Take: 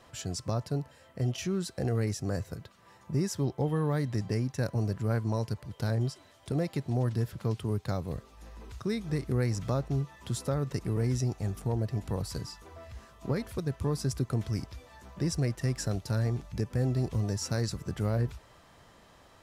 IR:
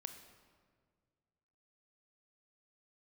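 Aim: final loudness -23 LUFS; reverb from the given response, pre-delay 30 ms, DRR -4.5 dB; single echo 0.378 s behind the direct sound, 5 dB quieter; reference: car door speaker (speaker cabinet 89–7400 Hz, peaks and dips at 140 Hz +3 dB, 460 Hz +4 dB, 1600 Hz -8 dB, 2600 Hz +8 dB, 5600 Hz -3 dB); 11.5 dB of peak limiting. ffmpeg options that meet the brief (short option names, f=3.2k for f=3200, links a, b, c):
-filter_complex "[0:a]alimiter=level_in=6dB:limit=-24dB:level=0:latency=1,volume=-6dB,aecho=1:1:378:0.562,asplit=2[a][b];[1:a]atrim=start_sample=2205,adelay=30[c];[b][c]afir=irnorm=-1:irlink=0,volume=8.5dB[d];[a][d]amix=inputs=2:normalize=0,highpass=89,equalizer=f=140:t=q:w=4:g=3,equalizer=f=460:t=q:w=4:g=4,equalizer=f=1.6k:t=q:w=4:g=-8,equalizer=f=2.6k:t=q:w=4:g=8,equalizer=f=5.6k:t=q:w=4:g=-3,lowpass=f=7.4k:w=0.5412,lowpass=f=7.4k:w=1.3066,volume=9dB"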